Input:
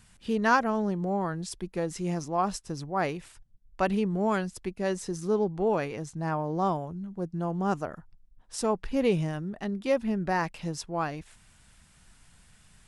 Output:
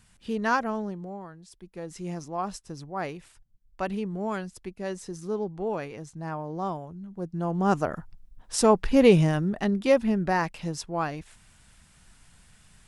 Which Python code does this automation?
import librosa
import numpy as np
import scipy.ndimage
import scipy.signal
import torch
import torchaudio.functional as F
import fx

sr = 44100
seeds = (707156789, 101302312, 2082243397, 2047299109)

y = fx.gain(x, sr, db=fx.line((0.73, -2.0), (1.41, -15.0), (2.01, -4.0), (6.96, -4.0), (7.97, 8.0), (9.5, 8.0), (10.5, 1.5)))